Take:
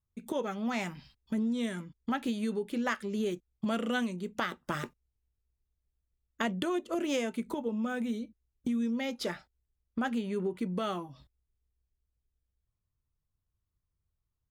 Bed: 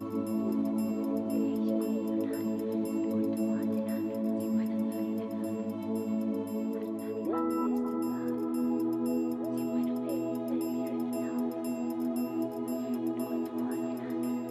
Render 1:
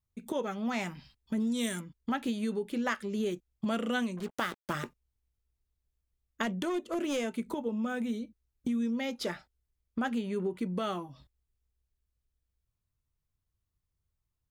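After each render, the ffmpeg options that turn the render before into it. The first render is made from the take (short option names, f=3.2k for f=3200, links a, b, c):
-filter_complex "[0:a]asplit=3[a][b][c];[a]afade=t=out:st=1.39:d=0.02[d];[b]aemphasis=mode=production:type=75kf,afade=t=in:st=1.39:d=0.02,afade=t=out:st=1.79:d=0.02[e];[c]afade=t=in:st=1.79:d=0.02[f];[d][e][f]amix=inputs=3:normalize=0,asettb=1/sr,asplit=3[g][h][i];[g]atrim=end=4.174[j];[h]atrim=start=4.17:end=4.73,asetpts=PTS-STARTPTS,afade=t=in:d=0.004:c=qsin,afade=t=out:st=0.556:d=0.004:c=qsin,acrusher=bits=6:mix=0:aa=0.5[k];[i]atrim=start=4.726[l];[j][k]acrossfade=d=0.004:c1=hsin:c2=qsin[m];[m][l]acrossfade=d=0.004:c1=qsin:c2=hsin,asettb=1/sr,asplit=3[n][o][p];[n]atrim=end=6.434[q];[o]atrim=start=6.43:end=7.28,asetpts=PTS-STARTPTS,afade=t=in:d=0.004:c=qsin,afade=t=out:st=0.846:d=0.004:c=qsin,volume=27dB,asoftclip=hard,volume=-27dB[r];[p]atrim=start=7.276[s];[q][r]acrossfade=d=0.004:c1=hsin:c2=qsin[t];[t][s]acrossfade=d=0.004:c1=qsin:c2=hsin"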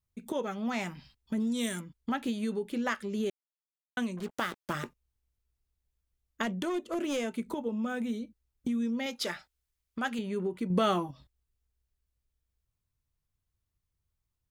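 -filter_complex "[0:a]asettb=1/sr,asplit=3[a][b][c];[a]atrim=end=9.064[d];[b]atrim=start=9.06:end=10.19,asetpts=PTS-STARTPTS,afade=t=in:d=0.004:c=qsin,afade=t=out:st=1.126:d=0.004:c=qsin,tiltshelf=f=810:g=-5[e];[c]atrim=start=10.186[f];[d][e]acrossfade=d=0.004:c1=hsin:c2=qsin[g];[g][f]acrossfade=d=0.004:c1=qsin:c2=hsin,asettb=1/sr,asplit=3[h][i][j];[h]atrim=end=10.704[k];[i]atrim=start=10.7:end=11.11,asetpts=PTS-STARTPTS,afade=t=in:d=0.004:c=qsin,afade=t=out:st=0.406:d=0.004:c=qsin,acontrast=81[l];[j]atrim=start=11.106[m];[k][l]acrossfade=d=0.004:c1=hsin:c2=qsin[n];[n][m]acrossfade=d=0.004:c1=qsin:c2=hsin,asplit=3[o][p][q];[o]atrim=end=3.3,asetpts=PTS-STARTPTS,afade=t=out:st=3.296:d=0.004:c=hsin[r];[p]atrim=start=3.3:end=3.97,asetpts=PTS-STARTPTS,volume=0[s];[q]atrim=start=3.97,asetpts=PTS-STARTPTS,afade=t=in:d=0.004:c=hsin[t];[r][s][t]concat=n=3:v=0:a=1"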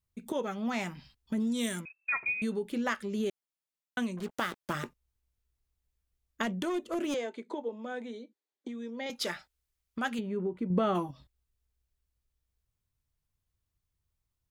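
-filter_complex "[0:a]asettb=1/sr,asplit=3[a][b][c];[a]atrim=end=1.854[d];[b]atrim=start=1.85:end=2.42,asetpts=PTS-STARTPTS,afade=t=in:d=0.004:c=qsin,afade=t=out:st=0.566:d=0.004:c=qsin,lowpass=f=2.3k:t=q:w=0.5098,lowpass=f=2.3k:t=q:w=0.6013,lowpass=f=2.3k:t=q:w=0.9,lowpass=f=2.3k:t=q:w=2.563,afreqshift=-2700[e];[c]atrim=start=2.416[f];[d][e]acrossfade=d=0.004:c1=hsin:c2=qsin[g];[g][f]acrossfade=d=0.004:c1=qsin:c2=hsin,asettb=1/sr,asplit=3[h][i][j];[h]atrim=end=7.144[k];[i]atrim=start=7.14:end=9.1,asetpts=PTS-STARTPTS,afade=t=in:d=0.004:c=qsin,afade=t=out:st=1.956:d=0.004:c=qsin,highpass=f=310:w=0.5412,highpass=f=310:w=1.3066,equalizer=f=1.3k:t=q:w=4:g=-8,equalizer=f=2.7k:t=q:w=4:g=-8,equalizer=f=5.5k:t=q:w=4:g=-10,lowpass=f=6.2k:w=0.5412,lowpass=f=6.2k:w=1.3066[l];[j]atrim=start=9.096[m];[k][l]acrossfade=d=0.004:c1=hsin:c2=qsin[n];[n][m]acrossfade=d=0.004:c1=qsin:c2=hsin,asplit=3[o][p][q];[o]afade=t=out:st=10.19:d=0.02[r];[p]lowpass=f=1.1k:p=1,afade=t=in:st=10.19:d=0.02,afade=t=out:st=10.94:d=0.02[s];[q]afade=t=in:st=10.94:d=0.02[t];[r][s][t]amix=inputs=3:normalize=0"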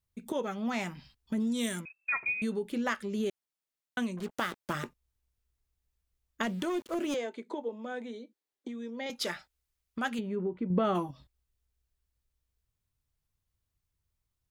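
-filter_complex "[0:a]asettb=1/sr,asplit=3[a][b][c];[a]atrim=end=6.474[d];[b]atrim=start=6.47:end=7.16,asetpts=PTS-STARTPTS,afade=t=in:d=0.004:c=qsin,afade=t=out:st=0.686:d=0.004:c=qsin,aeval=exprs='val(0)*gte(abs(val(0)),0.00376)':c=same[e];[c]atrim=start=7.156[f];[d][e]acrossfade=d=0.004:c1=hsin:c2=qsin[g];[g][f]acrossfade=d=0.004:c1=qsin:c2=hsin,asplit=3[h][i][j];[h]afade=t=out:st=10.35:d=0.02[k];[i]lowpass=4.1k,afade=t=in:st=10.35:d=0.02,afade=t=out:st=10.83:d=0.02[l];[j]afade=t=in:st=10.83:d=0.02[m];[k][l][m]amix=inputs=3:normalize=0"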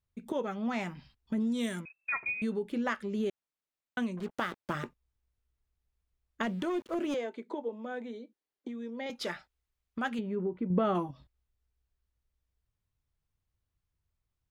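-af "highshelf=f=4.5k:g=-10.5"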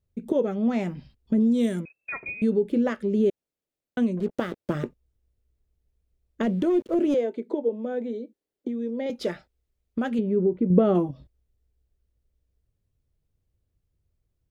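-af "lowshelf=f=700:t=q:w=1.5:g=9"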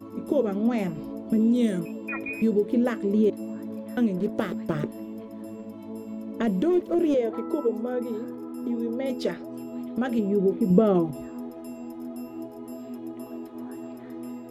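-filter_complex "[1:a]volume=-4.5dB[a];[0:a][a]amix=inputs=2:normalize=0"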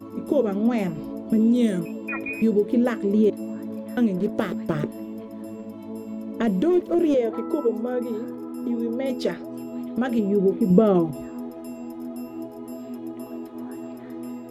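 -af "volume=2.5dB"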